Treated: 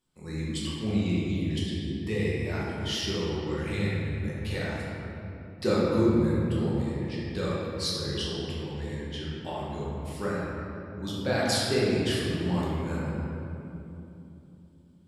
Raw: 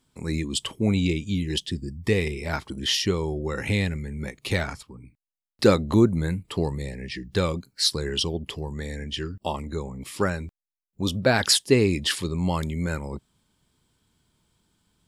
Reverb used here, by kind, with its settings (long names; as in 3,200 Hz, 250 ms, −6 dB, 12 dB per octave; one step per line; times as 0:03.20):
rectangular room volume 140 cubic metres, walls hard, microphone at 1 metre
level −13 dB